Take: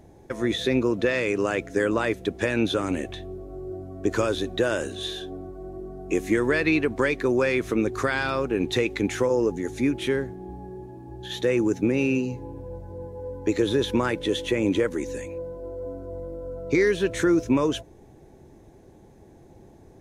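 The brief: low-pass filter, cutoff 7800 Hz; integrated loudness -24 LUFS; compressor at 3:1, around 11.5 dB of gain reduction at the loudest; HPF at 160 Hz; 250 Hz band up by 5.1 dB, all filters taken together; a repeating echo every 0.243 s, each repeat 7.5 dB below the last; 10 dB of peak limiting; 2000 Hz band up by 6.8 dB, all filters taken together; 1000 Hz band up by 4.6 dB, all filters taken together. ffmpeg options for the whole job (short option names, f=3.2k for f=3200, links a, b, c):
-af "highpass=160,lowpass=7.8k,equalizer=f=250:t=o:g=7,equalizer=f=1k:t=o:g=3,equalizer=f=2k:t=o:g=7.5,acompressor=threshold=-29dB:ratio=3,alimiter=level_in=1dB:limit=-24dB:level=0:latency=1,volume=-1dB,aecho=1:1:243|486|729|972|1215:0.422|0.177|0.0744|0.0312|0.0131,volume=9.5dB"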